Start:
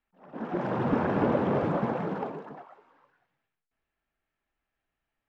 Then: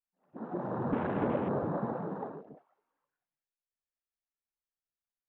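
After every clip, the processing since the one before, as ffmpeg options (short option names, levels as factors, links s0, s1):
-af "afwtdn=0.0141,volume=0.531"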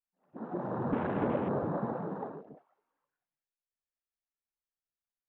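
-af anull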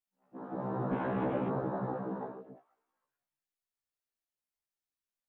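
-af "afftfilt=real='re*1.73*eq(mod(b,3),0)':imag='im*1.73*eq(mod(b,3),0)':win_size=2048:overlap=0.75,volume=1.19"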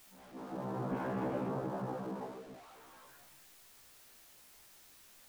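-af "aeval=exprs='val(0)+0.5*0.00501*sgn(val(0))':c=same,volume=0.596"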